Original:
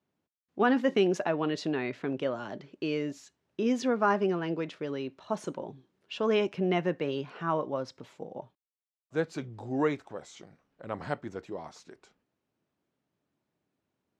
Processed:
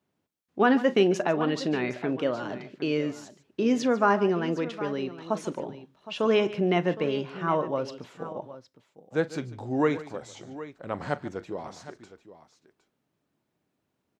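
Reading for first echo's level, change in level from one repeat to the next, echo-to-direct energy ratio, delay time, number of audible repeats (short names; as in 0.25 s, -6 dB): -17.5 dB, no steady repeat, -11.5 dB, 40 ms, 3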